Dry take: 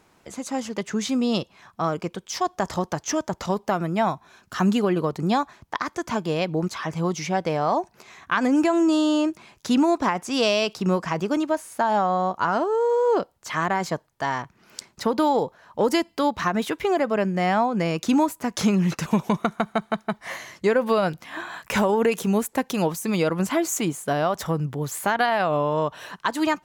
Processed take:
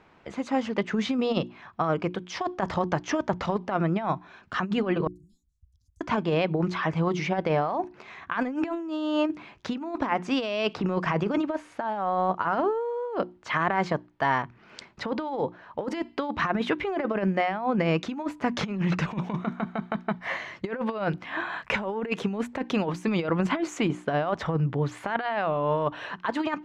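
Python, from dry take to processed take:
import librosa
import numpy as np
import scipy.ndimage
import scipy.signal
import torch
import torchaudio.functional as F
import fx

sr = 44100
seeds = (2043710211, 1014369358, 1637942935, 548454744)

y = fx.cheby2_bandstop(x, sr, low_hz=350.0, high_hz=2200.0, order=4, stop_db=80, at=(5.07, 6.01))
y = fx.band_squash(y, sr, depth_pct=70, at=(10.74, 11.38))
y = fx.high_shelf(y, sr, hz=9900.0, db=-8.0, at=(23.91, 24.97))
y = scipy.signal.sosfilt(scipy.signal.cheby1(2, 1.0, 2600.0, 'lowpass', fs=sr, output='sos'), y)
y = fx.hum_notches(y, sr, base_hz=60, count=6)
y = fx.over_compress(y, sr, threshold_db=-25.0, ratio=-0.5)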